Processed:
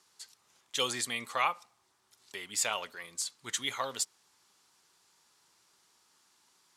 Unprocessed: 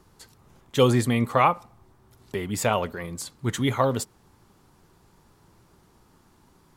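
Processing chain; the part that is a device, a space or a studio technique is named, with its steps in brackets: piezo pickup straight into a mixer (low-pass 6.4 kHz 12 dB/octave; differentiator); trim +6.5 dB

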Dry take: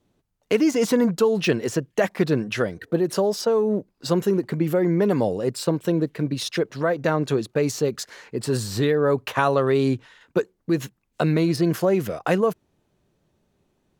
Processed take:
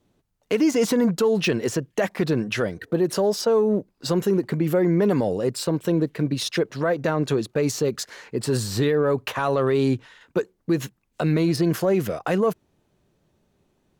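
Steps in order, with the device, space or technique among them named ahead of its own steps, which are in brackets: soft clipper into limiter (saturation -5 dBFS, distortion -31 dB; peak limiter -14 dBFS, peak gain reduction 7 dB); trim +1.5 dB

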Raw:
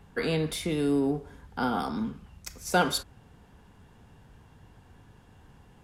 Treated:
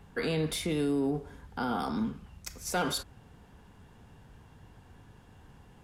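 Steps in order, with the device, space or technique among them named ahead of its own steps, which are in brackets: clipper into limiter (hard clipper -16 dBFS, distortion -21 dB; peak limiter -22 dBFS, peak gain reduction 6 dB)

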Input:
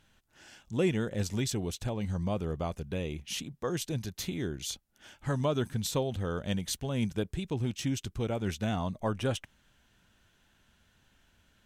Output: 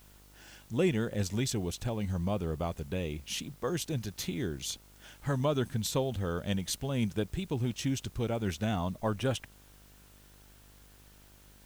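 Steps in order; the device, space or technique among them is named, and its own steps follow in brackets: video cassette with head-switching buzz (mains buzz 50 Hz, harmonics 29, -59 dBFS -6 dB/octave; white noise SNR 28 dB)

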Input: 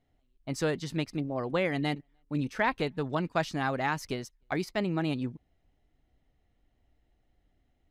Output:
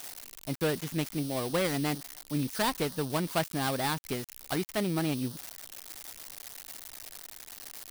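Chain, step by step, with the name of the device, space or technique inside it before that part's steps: budget class-D amplifier (dead-time distortion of 0.21 ms; zero-crossing glitches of -23 dBFS)

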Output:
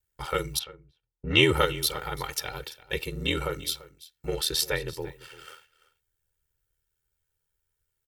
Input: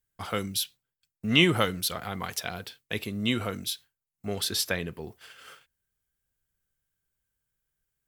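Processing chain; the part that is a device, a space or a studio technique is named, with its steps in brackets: ring-modulated robot voice (ring modulator 40 Hz; comb 2.2 ms, depth 100%); delay 340 ms -18.5 dB; 0.59–1.42 s: level-controlled noise filter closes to 670 Hz, open at -21.5 dBFS; trim +1.5 dB

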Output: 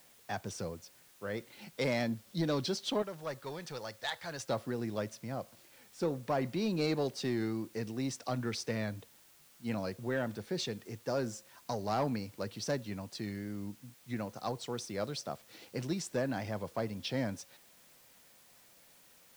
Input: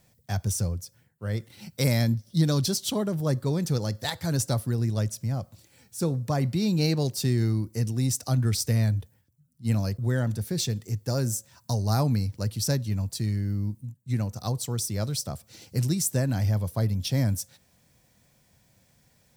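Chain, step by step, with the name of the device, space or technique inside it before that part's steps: tape answering machine (band-pass 310–3200 Hz; saturation -23 dBFS, distortion -19 dB; wow and flutter; white noise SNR 25 dB); 3.02–4.49 s: peaking EQ 260 Hz -13.5 dB 2.3 oct

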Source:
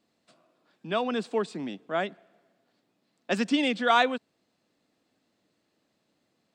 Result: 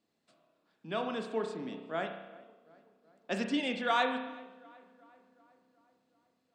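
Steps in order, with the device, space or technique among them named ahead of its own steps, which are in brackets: dub delay into a spring reverb (filtered feedback delay 375 ms, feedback 60%, low-pass 2.5 kHz, level -22 dB; spring tank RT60 1 s, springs 31 ms, chirp 55 ms, DRR 4.5 dB); trim -7.5 dB

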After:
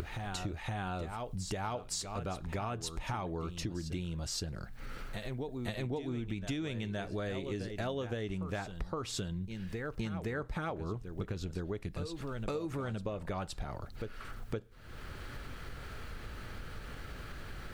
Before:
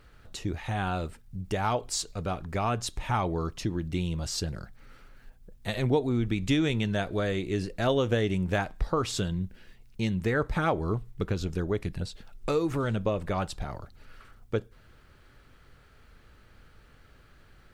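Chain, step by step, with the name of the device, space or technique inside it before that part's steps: reverse echo 517 ms -11.5 dB; upward and downward compression (upward compressor, threshold -37 dBFS; compression 5:1, threshold -39 dBFS, peak gain reduction 17.5 dB); trim +3.5 dB

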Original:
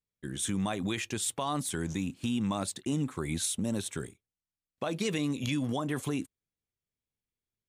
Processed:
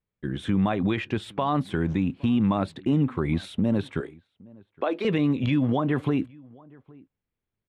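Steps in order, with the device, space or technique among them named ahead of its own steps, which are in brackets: 4.00–5.05 s: steep high-pass 280 Hz 36 dB/octave; shout across a valley (distance through air 430 m; echo from a far wall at 140 m, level -25 dB); trim +9 dB

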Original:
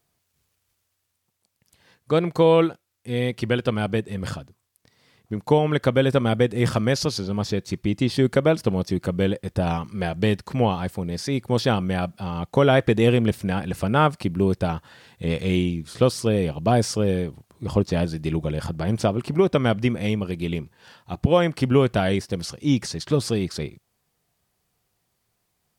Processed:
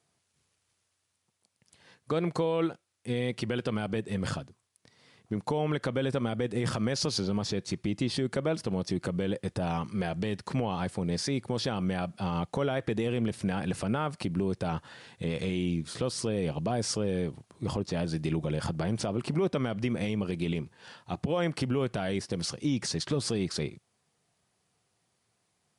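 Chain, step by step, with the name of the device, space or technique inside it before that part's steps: podcast mastering chain (high-pass 100 Hz 12 dB/octave; compression 2.5:1, threshold -22 dBFS, peak gain reduction 7 dB; peak limiter -19 dBFS, peak gain reduction 9.5 dB; MP3 96 kbps 24 kHz)

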